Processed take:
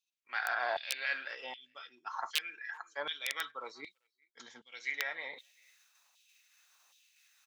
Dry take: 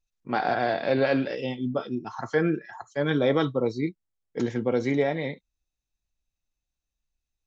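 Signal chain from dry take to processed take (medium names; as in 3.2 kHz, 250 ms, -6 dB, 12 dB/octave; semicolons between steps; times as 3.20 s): time-frequency box 3.91–4.72 s, 260–3000 Hz -10 dB; reverse; upward compressor, threshold -30 dBFS; reverse; integer overflow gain 12 dB; speakerphone echo 390 ms, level -28 dB; LFO high-pass saw down 1.3 Hz 870–3300 Hz; trim -7 dB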